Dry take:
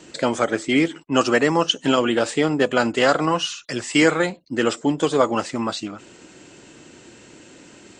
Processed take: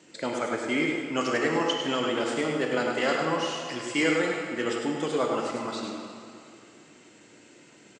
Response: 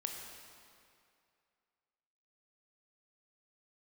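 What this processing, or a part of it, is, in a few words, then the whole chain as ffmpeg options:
PA in a hall: -filter_complex "[0:a]highpass=120,equalizer=f=2.1k:t=o:w=0.27:g=4.5,aecho=1:1:102:0.501[a];[1:a]atrim=start_sample=2205[b];[a][b]afir=irnorm=-1:irlink=0,volume=-8.5dB"

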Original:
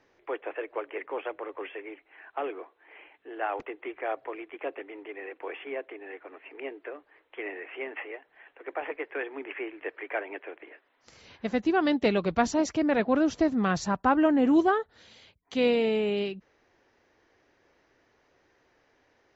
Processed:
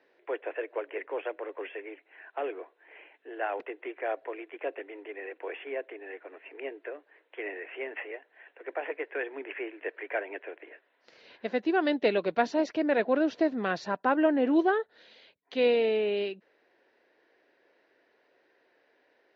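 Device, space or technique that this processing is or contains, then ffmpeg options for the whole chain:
phone earpiece: -af "highpass=400,equalizer=f=830:t=q:w=4:g=-6,equalizer=f=1.2k:t=q:w=4:g=-10,equalizer=f=2.2k:t=q:w=4:g=-4,equalizer=f=3.2k:t=q:w=4:g=-5,lowpass=f=4k:w=0.5412,lowpass=f=4k:w=1.3066,volume=3dB"

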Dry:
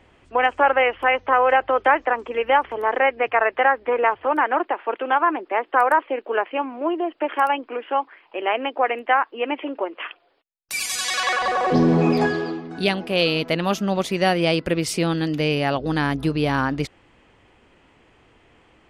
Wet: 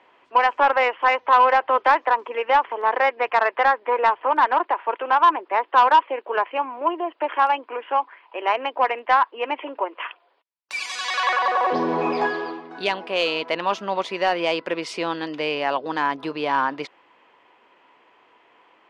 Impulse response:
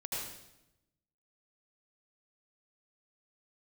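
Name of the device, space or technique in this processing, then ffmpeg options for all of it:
intercom: -af "highpass=440,lowpass=4k,equalizer=f=990:t=o:w=0.23:g=10,asoftclip=type=tanh:threshold=-7.5dB"

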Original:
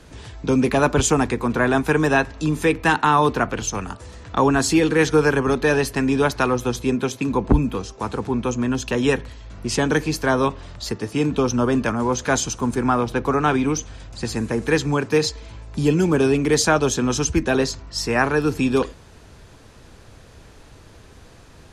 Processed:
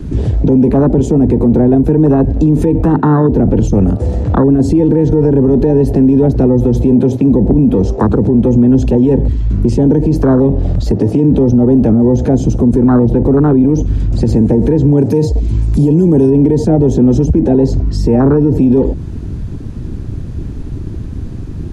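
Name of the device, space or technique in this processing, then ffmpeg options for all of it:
mastering chain: -filter_complex "[0:a]asettb=1/sr,asplit=3[a][b][c];[a]atrim=end=14.974[d];[b]atrim=start=14.97:end=16.3,asetpts=PTS-STARTPTS,afade=t=in:d=0.004:c=qsin,afade=t=out:st=1.326:d=0.004:c=qsin,aemphasis=mode=production:type=75kf[e];[c]atrim=start=16.296[f];[d][e]acrossfade=d=0.004:c1=hsin:c2=qsin[g];[g][f]acrossfade=d=0.004:c1=qsin:c2=hsin,equalizer=f=240:t=o:w=2.6:g=2,acrossover=split=150|480[h][i][j];[h]acompressor=threshold=-29dB:ratio=4[k];[i]acompressor=threshold=-19dB:ratio=4[l];[j]acompressor=threshold=-32dB:ratio=4[m];[k][l][m]amix=inputs=3:normalize=0,acompressor=threshold=-23dB:ratio=2,tiltshelf=f=760:g=3.5,alimiter=level_in=23dB:limit=-1dB:release=50:level=0:latency=1,afwtdn=0.251,volume=-1.5dB"

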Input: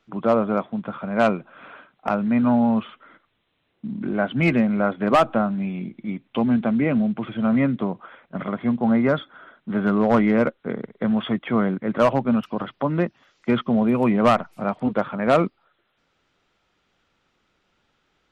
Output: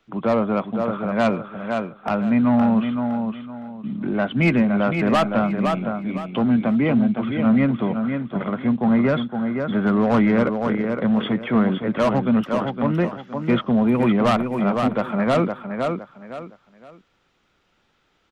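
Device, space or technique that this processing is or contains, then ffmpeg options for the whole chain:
one-band saturation: -filter_complex "[0:a]aecho=1:1:513|1026|1539:0.447|0.121|0.0326,acrossover=split=230|2100[a][b][c];[b]asoftclip=type=tanh:threshold=-16.5dB[d];[a][d][c]amix=inputs=3:normalize=0,volume=2dB"

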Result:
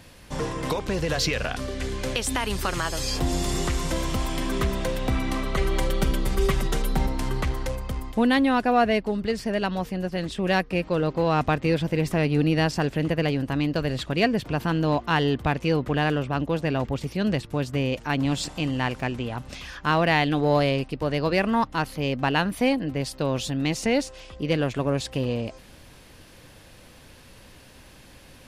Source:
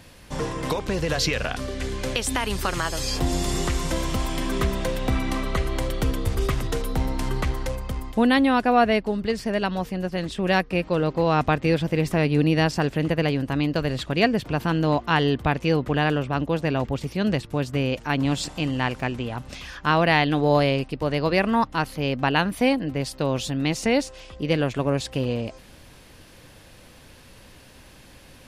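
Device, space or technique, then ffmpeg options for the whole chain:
parallel distortion: -filter_complex "[0:a]asplit=2[a][b];[b]asoftclip=type=hard:threshold=-21.5dB,volume=-10dB[c];[a][c]amix=inputs=2:normalize=0,asettb=1/sr,asplit=3[d][e][f];[d]atrim=end=5.574[g];[e]atrim=start=5.57:end=7.07,asetpts=PTS-STARTPTS,afade=t=in:d=0.004:c=qsin,afade=t=out:st=1.496:d=0.004:c=qsin,aecho=1:1:5.2:0.94,atrim=end_sample=66150[h];[f]atrim=start=7.066[i];[g][h]acrossfade=d=0.004:c1=hsin:c2=qsin[j];[j][i]acrossfade=d=0.004:c1=qsin:c2=hsin,volume=-3dB"

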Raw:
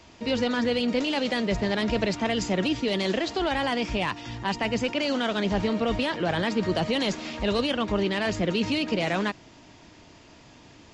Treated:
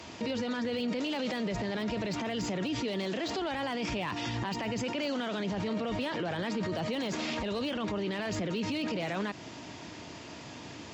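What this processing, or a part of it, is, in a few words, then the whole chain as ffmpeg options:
podcast mastering chain: -af "highpass=94,deesser=0.9,acompressor=threshold=-30dB:ratio=2.5,alimiter=level_in=8.5dB:limit=-24dB:level=0:latency=1:release=20,volume=-8.5dB,volume=7dB" -ar 48000 -c:a libmp3lame -b:a 128k

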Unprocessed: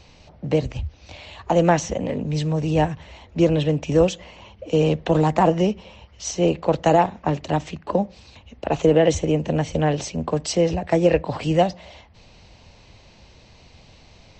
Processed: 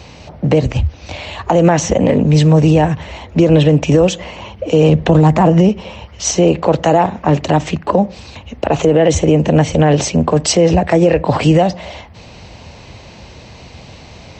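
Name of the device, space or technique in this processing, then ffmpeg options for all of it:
mastering chain: -filter_complex "[0:a]asettb=1/sr,asplit=3[a][b][c];[a]atrim=end=4.894[d];[b]atrim=start=4.89:end=5.69,asetpts=PTS-STARTPTS,afade=t=in:d=0.004:c=qsin,afade=t=out:st=0.796:d=0.004:c=qsin,bass=f=250:g=7,treble=f=4k:g=0[e];[c]atrim=start=5.686[f];[d][e]acrossfade=d=0.004:c1=hsin:c2=qsin[g];[g][f]acrossfade=d=0.004:c1=qsin:c2=hsin,highpass=59,equalizer=f=4.3k:t=o:w=1.5:g=-3.5,acompressor=threshold=-20dB:ratio=2,alimiter=level_in=15.5dB:limit=-1dB:release=50:level=0:latency=1,volume=-1dB"

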